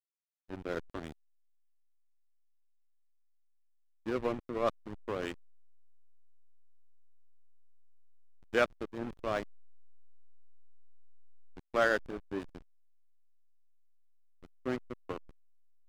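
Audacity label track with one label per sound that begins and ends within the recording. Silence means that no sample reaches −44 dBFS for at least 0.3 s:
0.500000	1.120000	sound
4.060000	5.340000	sound
8.540000	9.430000	sound
11.570000	12.570000	sound
14.440000	15.180000	sound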